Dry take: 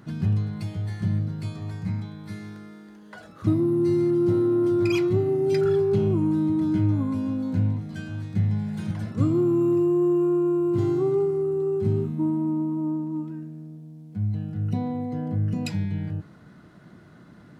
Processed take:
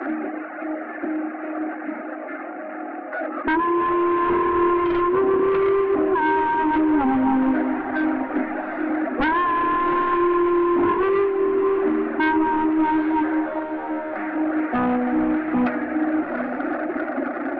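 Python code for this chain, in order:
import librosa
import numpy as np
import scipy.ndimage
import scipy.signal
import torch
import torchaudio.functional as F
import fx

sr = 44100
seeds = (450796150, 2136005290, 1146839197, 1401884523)

p1 = fx.delta_mod(x, sr, bps=16000, step_db=-33.0)
p2 = scipy.signal.sosfilt(scipy.signal.butter(16, 260.0, 'highpass', fs=sr, output='sos'), p1)
p3 = fx.dereverb_blind(p2, sr, rt60_s=1.3)
p4 = scipy.signal.sosfilt(scipy.signal.butter(2, 1200.0, 'lowpass', fs=sr, output='sos'), p3)
p5 = fx.rider(p4, sr, range_db=5, speed_s=2.0)
p6 = p4 + (p5 * librosa.db_to_amplitude(0.0))
p7 = 10.0 ** (-16.0 / 20.0) * np.tanh(p6 / 10.0 ** (-16.0 / 20.0))
p8 = fx.fixed_phaser(p7, sr, hz=660.0, stages=8)
p9 = fx.fold_sine(p8, sr, drive_db=11, ceiling_db=-16.5)
y = p9 + fx.echo_diffused(p9, sr, ms=774, feedback_pct=47, wet_db=-10, dry=0)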